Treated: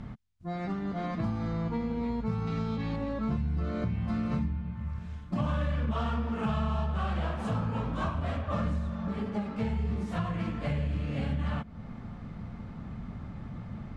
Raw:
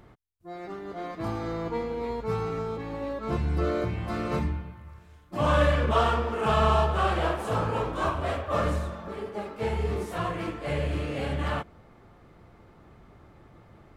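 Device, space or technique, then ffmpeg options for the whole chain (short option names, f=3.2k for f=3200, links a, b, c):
jukebox: -filter_complex "[0:a]lowpass=6.5k,lowshelf=f=280:t=q:w=3:g=7,acompressor=threshold=-36dB:ratio=4,asettb=1/sr,asplit=3[a][b][c];[a]atrim=end=2.474[d];[b]atrim=start=2.47:end=2.96,asetpts=PTS-STARTPTS,afade=t=in:d=0.004:c=qsin,afade=t=out:st=0.486:d=0.004:c=qsin,equalizer=f=3.9k:w=0.83:g=9[e];[c]atrim=start=2.956[f];[d][e]acrossfade=d=0.004:c1=hsin:c2=qsin[g];[g][f]acrossfade=d=0.004:c1=qsin:c2=hsin,volume=5.5dB"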